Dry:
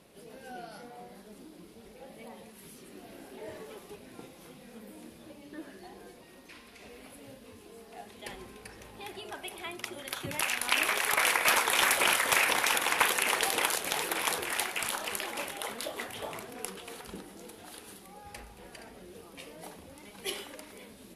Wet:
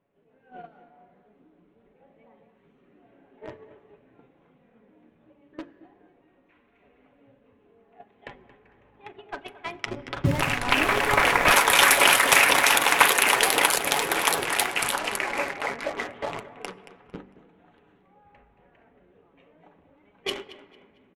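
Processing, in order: Wiener smoothing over 9 samples; gate -42 dBFS, range -14 dB; 15.17–15.98 resonant high shelf 2800 Hz -7 dB, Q 3; AGC gain up to 6 dB; 9.86–11.51 RIAA curve playback; feedback echo 0.226 s, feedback 35%, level -13.5 dB; in parallel at -6 dB: bit-crush 5-bit; on the sum: comb 7.1 ms, depth 30%; de-hum 48.35 Hz, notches 11; on a send at -20 dB: reverb RT60 2.7 s, pre-delay 4 ms; on the sum: low-pass opened by the level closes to 2900 Hz, open at -19 dBFS; gain -1 dB

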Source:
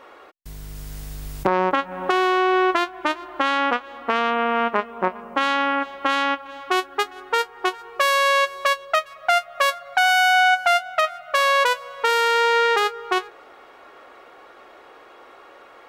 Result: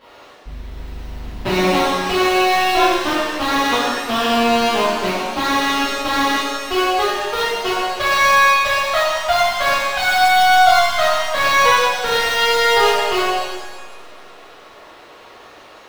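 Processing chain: half-waves squared off; resonant high shelf 5200 Hz -10 dB, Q 1.5; shimmer reverb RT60 1.3 s, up +7 st, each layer -8 dB, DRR -10.5 dB; gain -10.5 dB

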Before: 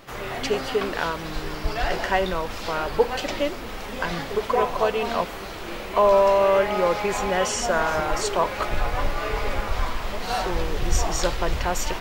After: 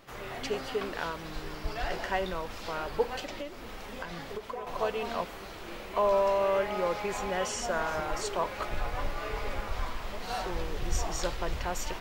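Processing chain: 3.19–4.67 compressor 12:1, threshold -26 dBFS, peak gain reduction 11 dB; gain -8.5 dB

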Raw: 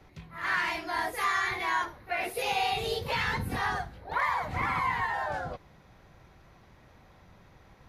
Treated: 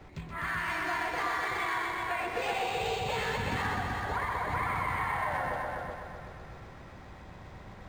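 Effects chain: compressor 4:1, threshold -39 dBFS, peak gain reduction 12.5 dB; on a send: multi-head echo 0.126 s, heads all three, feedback 50%, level -6 dB; on the sum: decimation joined by straight lines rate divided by 4×; gain +5.5 dB

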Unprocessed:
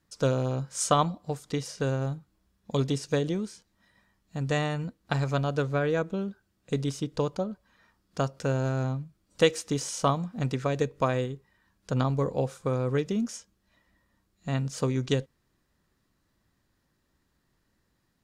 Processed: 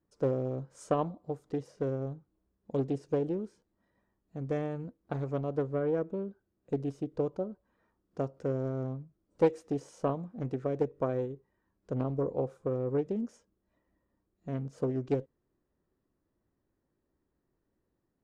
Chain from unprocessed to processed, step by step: EQ curve 190 Hz 0 dB, 370 Hz +8 dB, 3900 Hz -14 dB; Doppler distortion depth 0.25 ms; gain -8 dB

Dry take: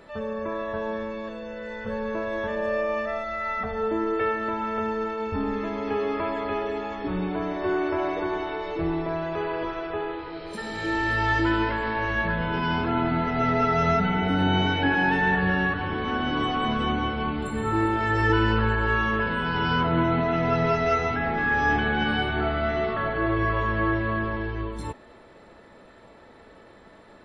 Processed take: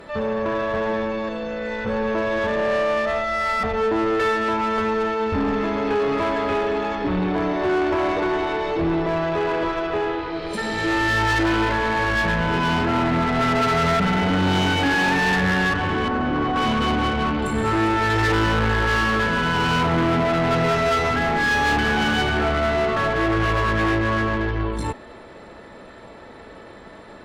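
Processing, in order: soft clip -25 dBFS, distortion -10 dB; 16.08–16.56 Bessel low-pass 1300 Hz, order 2; added harmonics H 2 -15 dB, 6 -31 dB, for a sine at -25 dBFS; gain +8.5 dB

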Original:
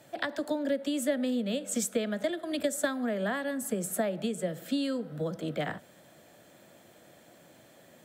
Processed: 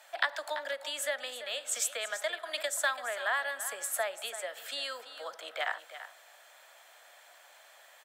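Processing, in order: HPF 810 Hz 24 dB/oct; high shelf 5600 Hz -5.5 dB; echo 0.337 s -12.5 dB; gain +5.5 dB

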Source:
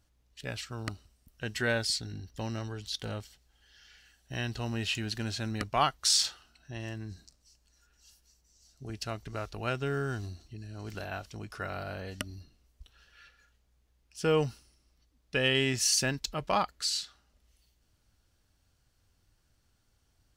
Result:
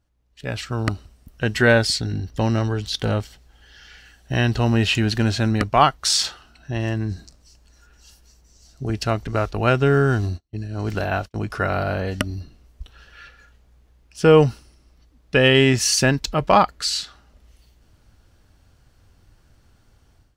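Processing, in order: 9.27–11.5 gate -43 dBFS, range -37 dB; high shelf 2600 Hz -9 dB; AGC gain up to 16 dB

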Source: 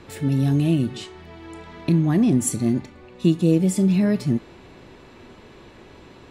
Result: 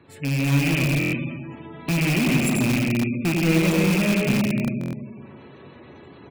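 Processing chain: rattling part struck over -21 dBFS, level -10 dBFS; resonator 140 Hz, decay 0.24 s, harmonics all, mix 50%; dynamic EQ 580 Hz, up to +6 dB, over -46 dBFS, Q 2.9; HPF 77 Hz 24 dB/oct; low shelf 250 Hz +2.5 dB; de-hum 105.6 Hz, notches 11; on a send: tapped delay 93/309 ms -4/-16 dB; on the sum: AGC gain up to 5 dB; digital reverb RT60 1.8 s, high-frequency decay 0.45×, pre-delay 0.1 s, DRR 2 dB; spectral gate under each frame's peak -25 dB strong; in parallel at -6.5 dB: wrapped overs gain 11.5 dB; on the sum: stuck buffer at 0.99/4.79, samples 1024, times 5; gain -7 dB

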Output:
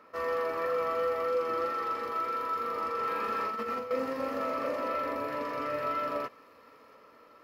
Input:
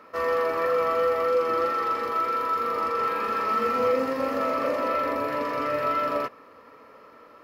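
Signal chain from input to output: 3.07–3.91 negative-ratio compressor -26 dBFS, ratio -0.5; on a send: thin delay 0.681 s, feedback 69%, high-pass 3400 Hz, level -18 dB; on the sum: gain -6.5 dB

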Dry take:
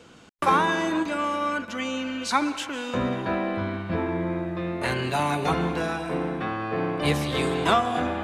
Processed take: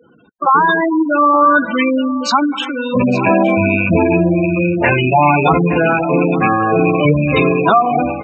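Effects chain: rattling part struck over -32 dBFS, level -18 dBFS; spectral gate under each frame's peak -10 dB strong; HPF 160 Hz 6 dB/oct; dynamic EQ 390 Hz, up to -3 dB, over -38 dBFS, Q 2.4; AGC gain up to 14.5 dB; echo 0.865 s -16.5 dB; maximiser +5 dB; gain -1 dB

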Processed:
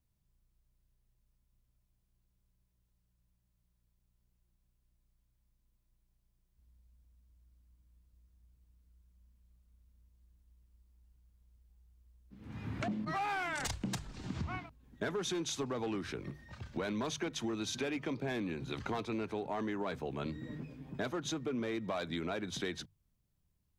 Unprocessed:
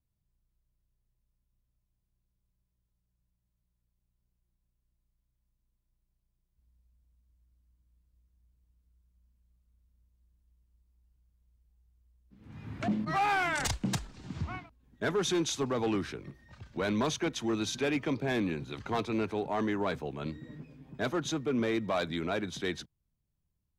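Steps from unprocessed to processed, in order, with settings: notches 50/100/150 Hz; compressor 6:1, threshold -38 dBFS, peak gain reduction 11.5 dB; gain +3.5 dB

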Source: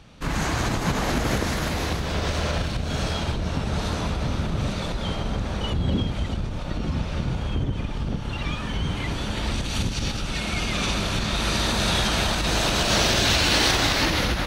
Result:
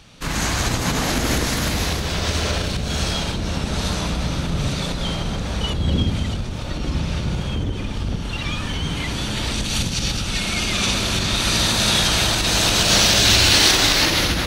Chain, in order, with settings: high shelf 2400 Hz +10 dB; on a send: dark delay 66 ms, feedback 70%, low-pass 490 Hz, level -4 dB

